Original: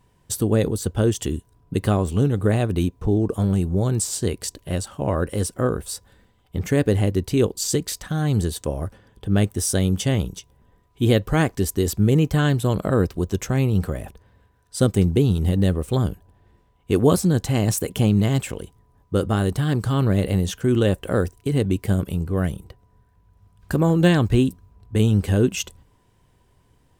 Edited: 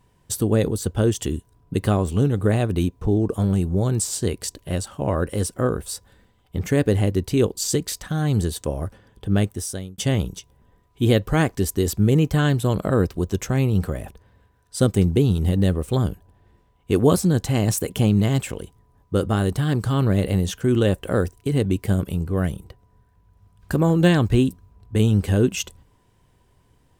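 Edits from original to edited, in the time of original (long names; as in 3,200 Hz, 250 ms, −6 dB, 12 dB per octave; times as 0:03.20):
0:09.32–0:09.98: fade out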